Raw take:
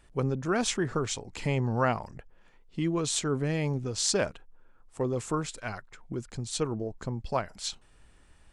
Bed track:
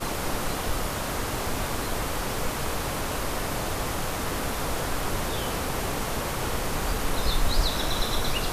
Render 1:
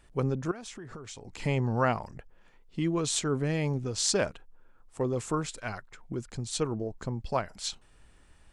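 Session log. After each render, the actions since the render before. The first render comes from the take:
0:00.51–0:01.40: downward compressor 12 to 1, threshold −39 dBFS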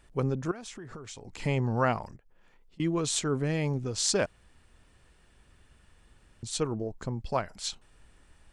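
0:02.16–0:02.80: downward compressor 10 to 1, threshold −55 dBFS
0:04.26–0:06.43: fill with room tone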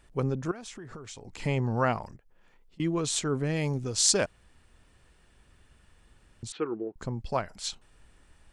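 0:03.56–0:04.25: high-shelf EQ 4,700 Hz +8 dB
0:06.52–0:06.96: loudspeaker in its box 310–2,700 Hz, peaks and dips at 350 Hz +7 dB, 630 Hz −10 dB, 920 Hz −4 dB, 1,400 Hz +4 dB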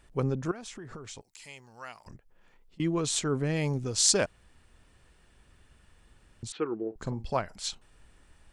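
0:01.21–0:02.06: first-order pre-emphasis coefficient 0.97
0:06.77–0:07.33: double-tracking delay 45 ms −12.5 dB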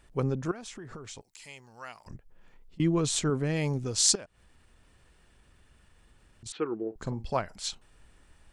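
0:02.10–0:03.30: low-shelf EQ 250 Hz +6.5 dB
0:04.15–0:06.46: downward compressor 2 to 1, threshold −55 dBFS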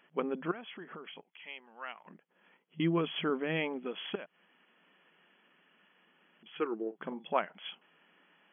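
brick-wall band-pass 160–3,400 Hz
spectral tilt +2 dB per octave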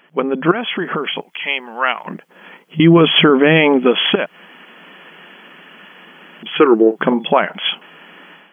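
automatic gain control gain up to 12.5 dB
boost into a limiter +13.5 dB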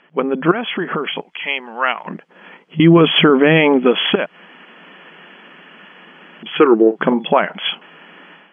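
high-frequency loss of the air 98 metres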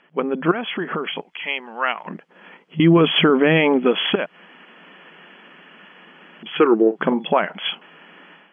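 level −4 dB

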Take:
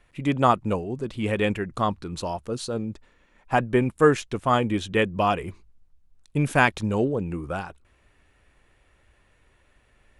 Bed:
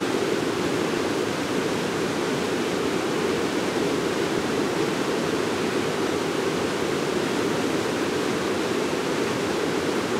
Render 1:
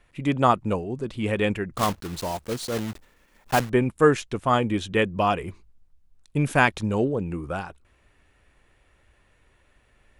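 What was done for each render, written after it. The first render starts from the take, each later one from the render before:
0:01.77–0:03.71: one scale factor per block 3 bits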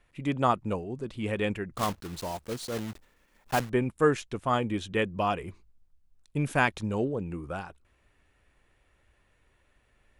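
level −5.5 dB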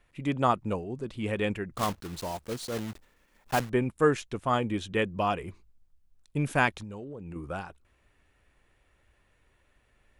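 0:06.70–0:07.36: downward compressor 8 to 1, threshold −37 dBFS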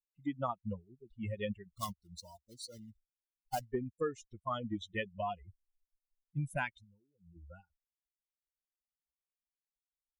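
spectral dynamics exaggerated over time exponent 3
downward compressor 6 to 1, threshold −32 dBFS, peak gain reduction 12 dB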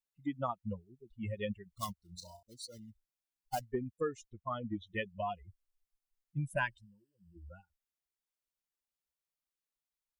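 0:01.97–0:02.43: flutter between parallel walls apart 5.7 metres, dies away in 0.25 s
0:04.30–0:04.87: high-frequency loss of the air 310 metres
0:06.53–0:07.49: EQ curve with evenly spaced ripples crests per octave 1.3, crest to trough 12 dB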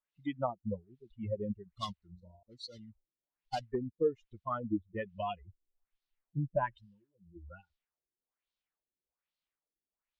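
auto-filter low-pass sine 1.2 Hz 330–4,100 Hz

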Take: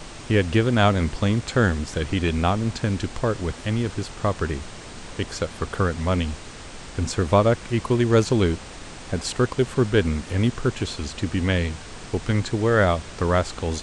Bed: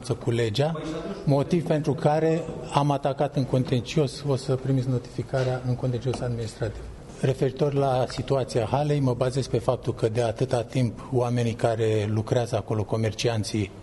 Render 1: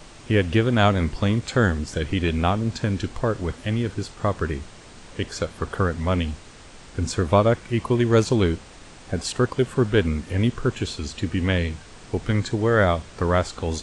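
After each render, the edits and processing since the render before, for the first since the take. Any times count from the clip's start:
noise reduction from a noise print 6 dB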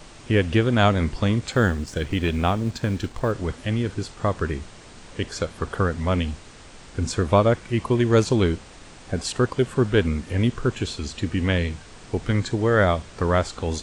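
0:01.52–0:03.32: mu-law and A-law mismatch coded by A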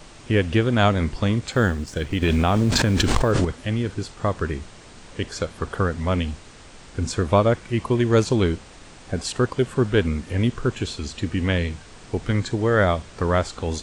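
0:02.22–0:03.45: envelope flattener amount 100%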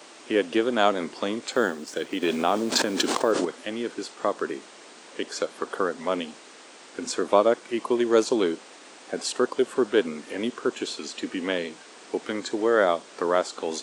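high-pass filter 280 Hz 24 dB per octave
dynamic equaliser 2,100 Hz, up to −5 dB, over −38 dBFS, Q 1.3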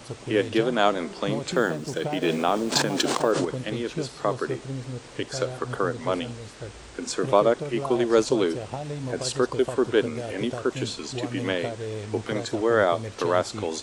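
mix in bed −9.5 dB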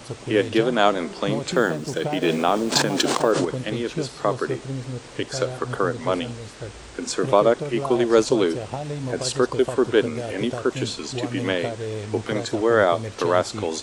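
level +3 dB
brickwall limiter −3 dBFS, peak gain reduction 1.5 dB

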